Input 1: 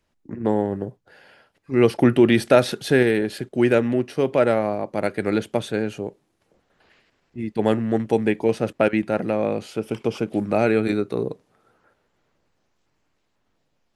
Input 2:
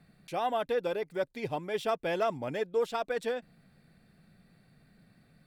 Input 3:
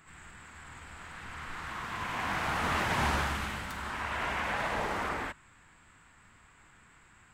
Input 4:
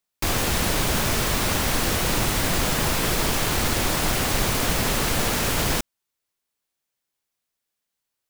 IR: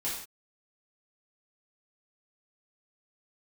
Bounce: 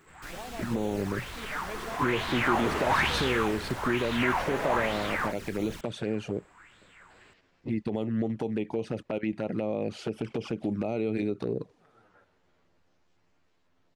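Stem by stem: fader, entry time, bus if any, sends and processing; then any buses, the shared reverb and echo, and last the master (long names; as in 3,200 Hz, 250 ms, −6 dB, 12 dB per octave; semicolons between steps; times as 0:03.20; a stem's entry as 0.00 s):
+3.0 dB, 0.30 s, bus A, no send, Bessel low-pass filter 6,300 Hz, order 2; downward compressor 5 to 1, threshold −26 dBFS, peak gain reduction 15 dB
−4.5 dB, 0.00 s, bus A, no send, brickwall limiter −28 dBFS, peak gain reduction 9.5 dB; bit reduction 9 bits
−3.0 dB, 0.00 s, no bus, no send, auto-filter bell 1.1 Hz 380–4,000 Hz +16 dB
−17.5 dB, 0.00 s, bus A, no send, high-shelf EQ 8,900 Hz −5 dB
bus A: 0.0 dB, flanger swept by the level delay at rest 11.8 ms, full sweep at −22 dBFS; brickwall limiter −20 dBFS, peak gain reduction 8 dB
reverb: not used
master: no processing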